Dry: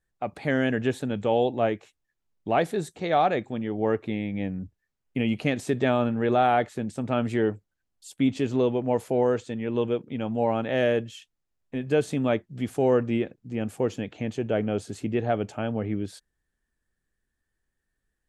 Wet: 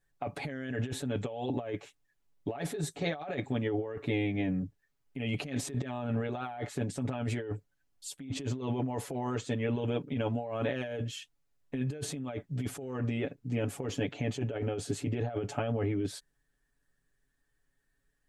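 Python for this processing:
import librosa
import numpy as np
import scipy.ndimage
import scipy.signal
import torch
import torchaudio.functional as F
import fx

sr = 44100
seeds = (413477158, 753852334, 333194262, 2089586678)

y = x + 0.9 * np.pad(x, (int(7.1 * sr / 1000.0), 0))[:len(x)]
y = fx.over_compress(y, sr, threshold_db=-29.0, ratio=-1.0)
y = F.gain(torch.from_numpy(y), -5.0).numpy()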